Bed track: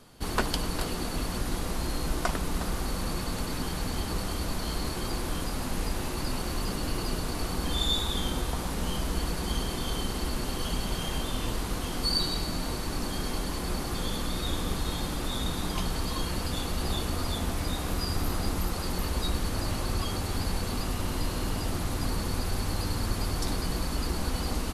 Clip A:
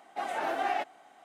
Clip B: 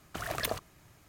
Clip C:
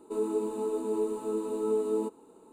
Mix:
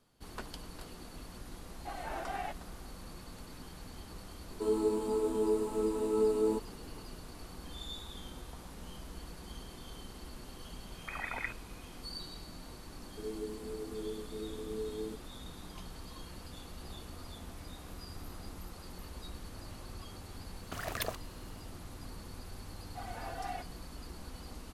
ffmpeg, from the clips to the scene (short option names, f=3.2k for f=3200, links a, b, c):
-filter_complex "[1:a]asplit=2[a][b];[3:a]asplit=2[c][d];[2:a]asplit=2[e][f];[0:a]volume=-16.5dB[g];[e]lowpass=f=2.2k:t=q:w=0.5098,lowpass=f=2.2k:t=q:w=0.6013,lowpass=f=2.2k:t=q:w=0.9,lowpass=f=2.2k:t=q:w=2.563,afreqshift=-2600[h];[d]asuperstop=centerf=1200:order=4:qfactor=0.51[i];[b]aecho=1:1:4.1:0.83[j];[a]atrim=end=1.24,asetpts=PTS-STARTPTS,volume=-9dB,afade=t=in:d=0.004:c=hsin,afade=t=out:st=1.236:d=0.004:c=hsin,adelay=1690[k];[c]atrim=end=2.52,asetpts=PTS-STARTPTS,volume=-0.5dB,afade=t=in:d=0.004:c=hsin,afade=t=out:st=2.516:d=0.004:c=hsin,adelay=4500[l];[h]atrim=end=1.08,asetpts=PTS-STARTPTS,volume=-3.5dB,afade=t=in:d=0.004:c=hsin,afade=t=out:st=1.076:d=0.004:c=hsin,adelay=10930[m];[i]atrim=end=2.52,asetpts=PTS-STARTPTS,volume=-9.5dB,afade=t=in:d=0.004:c=hsin,afade=t=out:st=2.516:d=0.004:c=hsin,adelay=13070[n];[f]atrim=end=1.08,asetpts=PTS-STARTPTS,volume=-3.5dB,afade=t=in:d=0.004:c=hsin,afade=t=out:st=1.076:d=0.004:c=hsin,adelay=20570[o];[j]atrim=end=1.24,asetpts=PTS-STARTPTS,volume=-14dB,afade=t=in:d=0.004:c=hsin,afade=t=out:st=1.236:d=0.004:c=hsin,adelay=22790[p];[g][k][l][m][n][o][p]amix=inputs=7:normalize=0"